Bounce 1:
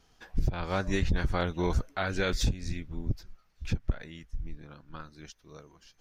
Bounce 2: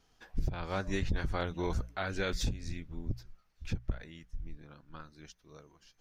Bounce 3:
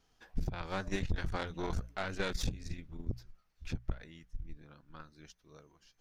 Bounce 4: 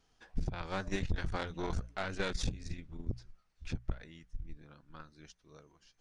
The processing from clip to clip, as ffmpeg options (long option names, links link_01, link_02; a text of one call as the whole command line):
ffmpeg -i in.wav -af "bandreject=frequency=60:width_type=h:width=6,bandreject=frequency=120:width_type=h:width=6,bandreject=frequency=180:width_type=h:width=6,volume=-4.5dB" out.wav
ffmpeg -i in.wav -af "aeval=exprs='0.0944*(cos(1*acos(clip(val(0)/0.0944,-1,1)))-cos(1*PI/2))+0.0188*(cos(4*acos(clip(val(0)/0.0944,-1,1)))-cos(4*PI/2))':channel_layout=same,volume=-3dB" out.wav
ffmpeg -i in.wav -af "aresample=22050,aresample=44100" out.wav